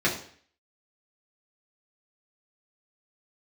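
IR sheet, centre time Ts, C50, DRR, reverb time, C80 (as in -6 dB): 26 ms, 8.5 dB, -6.0 dB, 0.50 s, 12.5 dB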